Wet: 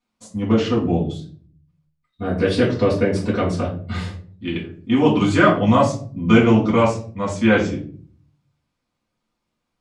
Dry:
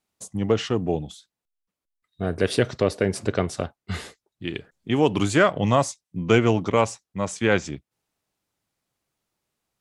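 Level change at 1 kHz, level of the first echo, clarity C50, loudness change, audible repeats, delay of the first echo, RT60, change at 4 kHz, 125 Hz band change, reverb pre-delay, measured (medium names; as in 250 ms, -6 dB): +4.5 dB, no echo, 8.0 dB, +5.0 dB, no echo, no echo, 0.45 s, +1.5 dB, +5.0 dB, 4 ms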